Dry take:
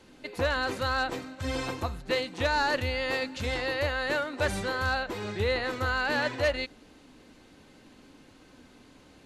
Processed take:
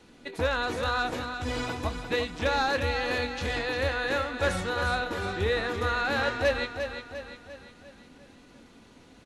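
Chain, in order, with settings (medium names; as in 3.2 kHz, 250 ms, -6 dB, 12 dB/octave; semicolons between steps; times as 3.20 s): pitch shift -1 st; doubling 23 ms -12 dB; on a send: feedback delay 350 ms, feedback 48%, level -8 dB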